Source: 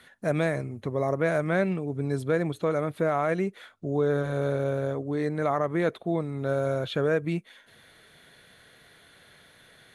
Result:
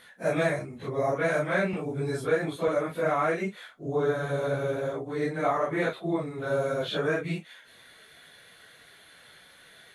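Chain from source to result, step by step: phase scrambler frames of 0.1 s; low shelf 450 Hz -8.5 dB; 1.73–2.68 three-band squash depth 40%; gain +3 dB

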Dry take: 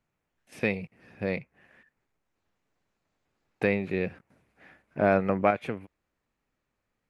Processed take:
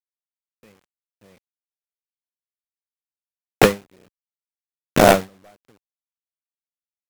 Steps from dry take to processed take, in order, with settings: 3.8–5.14 cycle switcher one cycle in 3, muted; recorder AGC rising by 5.7 dB/s; in parallel at -8 dB: decimation with a swept rate 30×, swing 60% 2.7 Hz; on the sum: high shelf 3400 Hz -10 dB; bit-crush 5-bit; HPF 65 Hz 6 dB/oct; sine folder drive 10 dB, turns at -4 dBFS; ending taper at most 230 dB/s; gain +1 dB

